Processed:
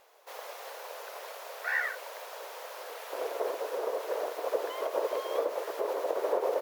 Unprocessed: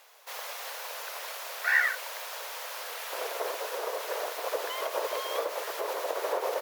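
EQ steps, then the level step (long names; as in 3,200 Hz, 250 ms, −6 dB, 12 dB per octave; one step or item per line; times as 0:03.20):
tilt shelving filter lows +9 dB, about 700 Hz
0.0 dB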